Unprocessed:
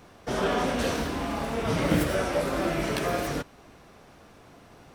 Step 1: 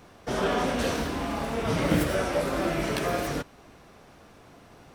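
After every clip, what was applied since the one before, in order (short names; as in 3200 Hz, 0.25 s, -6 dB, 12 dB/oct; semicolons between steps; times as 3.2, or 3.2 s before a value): nothing audible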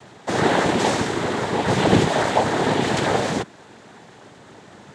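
noise vocoder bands 6; gain +8 dB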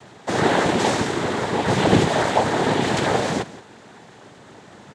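echo 0.173 s -17 dB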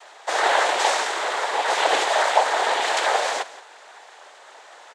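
HPF 590 Hz 24 dB/oct; gain +2.5 dB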